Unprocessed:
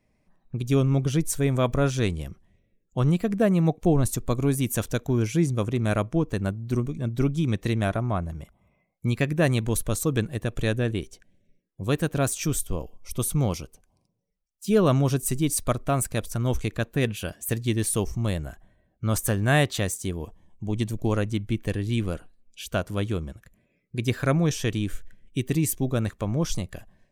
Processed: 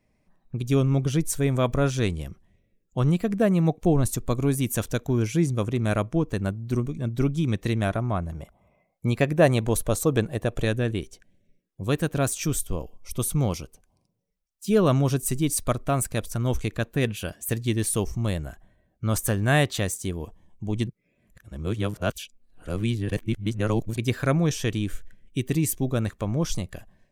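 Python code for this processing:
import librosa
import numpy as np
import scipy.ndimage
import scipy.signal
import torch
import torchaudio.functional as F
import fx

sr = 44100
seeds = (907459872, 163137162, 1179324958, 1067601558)

y = fx.peak_eq(x, sr, hz=660.0, db=7.5, octaves=1.3, at=(8.32, 10.65))
y = fx.edit(y, sr, fx.reverse_span(start_s=20.87, length_s=3.1), tone=tone)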